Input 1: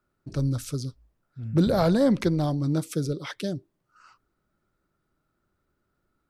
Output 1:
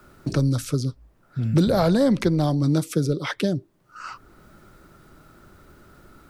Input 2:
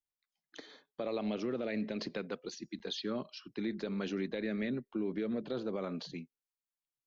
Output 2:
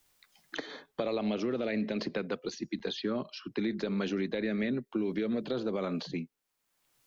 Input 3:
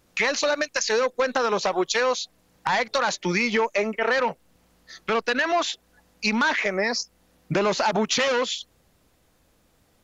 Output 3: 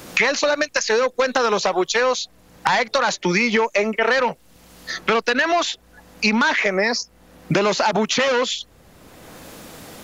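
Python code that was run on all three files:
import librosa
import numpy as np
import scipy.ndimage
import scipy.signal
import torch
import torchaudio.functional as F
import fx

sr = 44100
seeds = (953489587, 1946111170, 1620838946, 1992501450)

y = fx.band_squash(x, sr, depth_pct=70)
y = y * librosa.db_to_amplitude(4.0)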